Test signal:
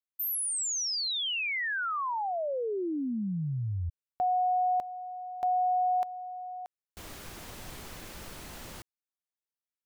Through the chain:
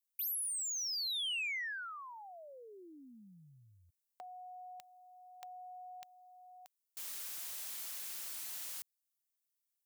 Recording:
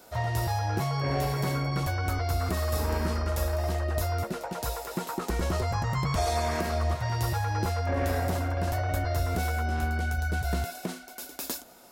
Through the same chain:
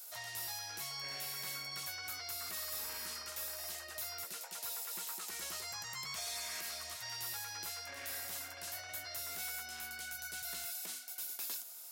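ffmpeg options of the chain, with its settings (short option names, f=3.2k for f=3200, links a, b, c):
-filter_complex "[0:a]acrossover=split=3900[a][b];[b]acompressor=threshold=-44dB:ratio=4:attack=1:release=60[c];[a][c]amix=inputs=2:normalize=0,highpass=75,aderivative,acrossover=split=170|1600[d][e][f];[e]acompressor=threshold=-56dB:ratio=6:release=982[g];[f]asoftclip=type=tanh:threshold=-40dB[h];[d][g][h]amix=inputs=3:normalize=0,volume=5.5dB"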